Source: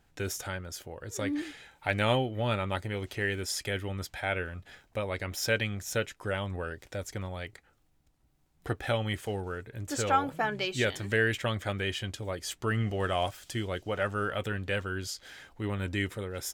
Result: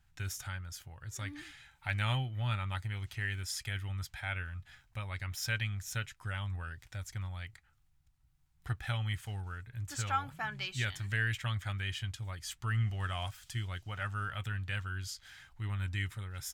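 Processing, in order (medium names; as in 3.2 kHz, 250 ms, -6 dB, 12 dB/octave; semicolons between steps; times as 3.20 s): FFT filter 130 Hz 0 dB, 190 Hz -11 dB, 490 Hz -23 dB, 800 Hz -10 dB, 1.3 kHz -5 dB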